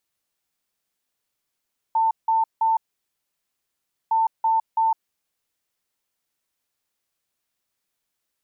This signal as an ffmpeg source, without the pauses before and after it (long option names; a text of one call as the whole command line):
ffmpeg -f lavfi -i "aevalsrc='0.15*sin(2*PI*895*t)*clip(min(mod(mod(t,2.16),0.33),0.16-mod(mod(t,2.16),0.33))/0.005,0,1)*lt(mod(t,2.16),0.99)':duration=4.32:sample_rate=44100" out.wav